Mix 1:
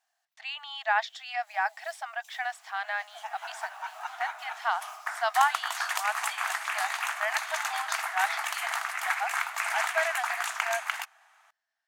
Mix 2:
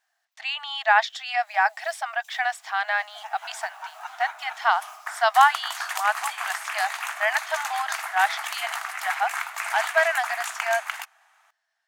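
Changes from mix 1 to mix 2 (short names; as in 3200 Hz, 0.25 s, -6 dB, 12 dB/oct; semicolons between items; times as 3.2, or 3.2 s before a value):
speech +7.5 dB; master: add high shelf 11000 Hz +3.5 dB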